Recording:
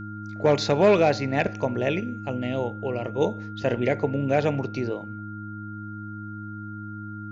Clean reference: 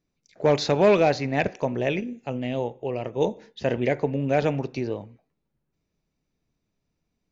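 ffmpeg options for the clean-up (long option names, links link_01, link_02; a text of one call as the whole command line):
ffmpeg -i in.wav -af "bandreject=frequency=105:width_type=h:width=4,bandreject=frequency=210:width_type=h:width=4,bandreject=frequency=315:width_type=h:width=4,bandreject=frequency=1400:width=30" out.wav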